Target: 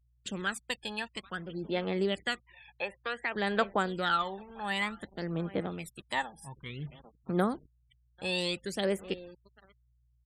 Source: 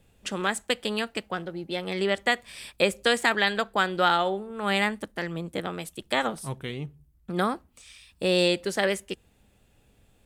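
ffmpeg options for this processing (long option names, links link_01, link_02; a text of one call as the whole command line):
ffmpeg -i in.wav -filter_complex "[0:a]agate=range=-12dB:threshold=-49dB:ratio=16:detection=peak,aecho=1:1:793|1586:0.0708|0.0227,aphaser=in_gain=1:out_gain=1:delay=1.2:decay=0.66:speed=0.55:type=sinusoidal,acrusher=bits=6:mix=0:aa=0.5,asettb=1/sr,asplit=3[link_01][link_02][link_03];[link_01]atrim=end=2.404[link_04];[link_02]atrim=start=2.4:end=3.36,asetpts=PTS-STARTPTS,afade=type=in:duration=0.004:curve=qsin,afade=type=out:start_time=0.956:duration=0.004:curve=qsin,acrossover=split=400 2600:gain=0.2 1 0.126[link_05][link_06][link_07];[link_05][link_06][link_07]amix=inputs=3:normalize=0[link_08];[link_03]atrim=start=3.356[link_09];[link_04][link_08]acrossfade=duration=0.004:curve1=hsin:curve2=qsin[link_10];[link_10][link_09]acrossfade=duration=0.004:curve1=qsin:curve2=hsin,asettb=1/sr,asplit=3[link_11][link_12][link_13];[link_11]atrim=end=4.704[link_14];[link_12]atrim=start=4.7:end=5.56,asetpts=PTS-STARTPTS,afade=type=in:duration=0.004:curve=qsin,afade=type=out:start_time=0.856:duration=0.004:curve=qsin,aeval=exprs='sgn(val(0))*max(abs(val(0))-0.00266,0)':channel_layout=same[link_15];[link_13]atrim=start=5.556[link_16];[link_14][link_15]acrossfade=duration=0.004:curve1=hsin:curve2=qsin[link_17];[link_17][link_16]acrossfade=duration=0.004:curve1=qsin:curve2=hsin,asettb=1/sr,asplit=3[link_18][link_19][link_20];[link_18]atrim=end=6.224[link_21];[link_19]atrim=start=6.22:end=6.66,asetpts=PTS-STARTPTS,afade=type=in:duration=0.004:curve=qsin,afade=type=out:start_time=0.436:duration=0.004:curve=qsin,acompressor=threshold=-33dB:ratio=6[link_22];[link_20]atrim=start=6.656[link_23];[link_21][link_22]acrossfade=duration=0.004:curve1=hsin:curve2=qsin[link_24];[link_24][link_23]acrossfade=duration=0.004:curve1=qsin:curve2=hsin,aeval=exprs='val(0)+0.00141*(sin(2*PI*60*n/s)+sin(2*PI*2*60*n/s)/2+sin(2*PI*3*60*n/s)/3+sin(2*PI*4*60*n/s)/4+sin(2*PI*5*60*n/s)/5)':channel_layout=same,afftfilt=real='re*gte(hypot(re,im),0.00708)':imag='im*gte(hypot(re,im),0.00708)':win_size=1024:overlap=0.75,volume=-9dB" out.wav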